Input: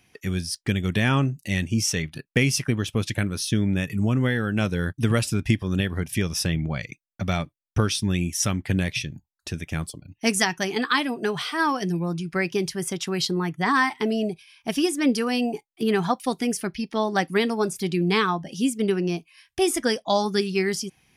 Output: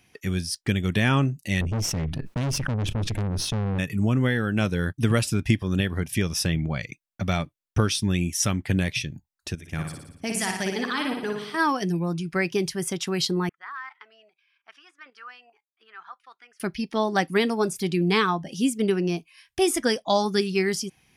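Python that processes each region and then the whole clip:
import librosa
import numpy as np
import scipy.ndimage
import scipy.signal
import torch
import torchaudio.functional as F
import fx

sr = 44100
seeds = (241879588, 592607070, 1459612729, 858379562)

y = fx.chain(x, sr, fx.tilt_eq(slope=-3.5),
    fx.tube_stage(drive_db=24.0, bias=0.65),
    fx.sustainer(db_per_s=36.0), at=(1.61, 3.79))
y = fx.chain(y, sr, fx.level_steps(step_db=14),
    fx.room_flutter(wall_m=9.9, rt60_s=0.74), at=(9.55, 11.57))
y = fx.chain(y, sr, fx.level_steps(step_db=9),
    fx.ladder_bandpass(hz=1500.0, resonance_pct=60), at=(13.49, 16.6))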